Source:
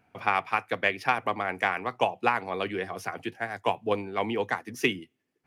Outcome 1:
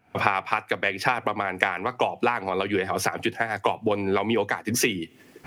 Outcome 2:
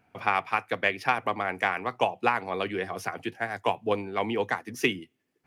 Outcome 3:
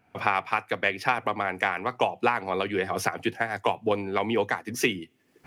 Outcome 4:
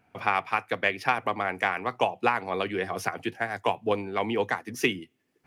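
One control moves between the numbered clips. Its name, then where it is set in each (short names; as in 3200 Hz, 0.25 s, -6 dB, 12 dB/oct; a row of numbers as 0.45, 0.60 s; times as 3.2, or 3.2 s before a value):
recorder AGC, rising by: 86, 5.2, 35, 14 dB/s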